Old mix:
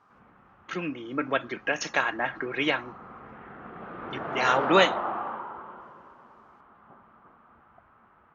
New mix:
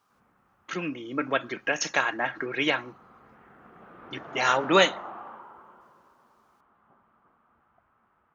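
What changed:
background −9.5 dB
master: remove high-frequency loss of the air 83 metres

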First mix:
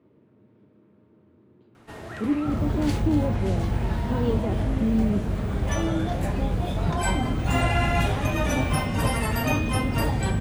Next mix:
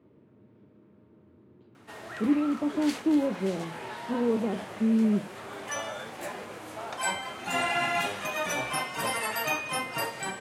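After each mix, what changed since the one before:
first sound: add high-pass filter 650 Hz 6 dB per octave
second sound: muted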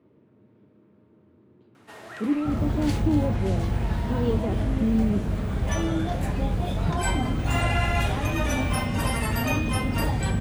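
second sound: unmuted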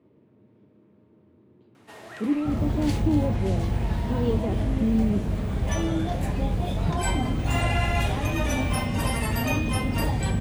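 master: add parametric band 1,400 Hz −4 dB 0.53 octaves

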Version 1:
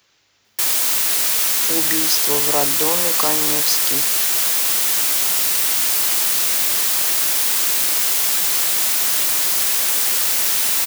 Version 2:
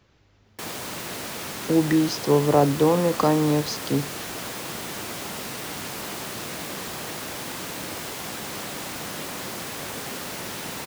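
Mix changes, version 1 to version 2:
background −4.5 dB
master: add spectral tilt −4.5 dB per octave

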